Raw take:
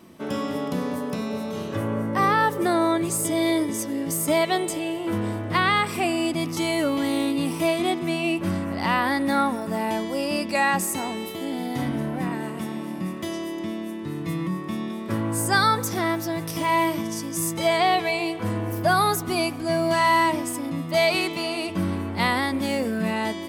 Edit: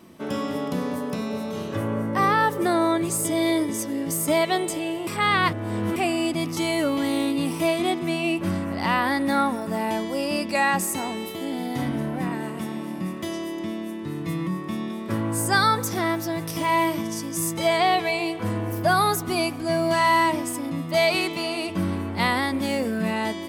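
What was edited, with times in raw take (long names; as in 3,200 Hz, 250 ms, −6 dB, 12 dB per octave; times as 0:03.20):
0:05.07–0:05.96: reverse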